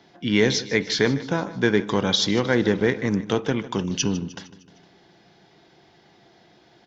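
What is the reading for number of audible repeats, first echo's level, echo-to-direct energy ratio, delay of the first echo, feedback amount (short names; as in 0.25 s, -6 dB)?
4, -17.0 dB, -15.5 dB, 0.153 s, 54%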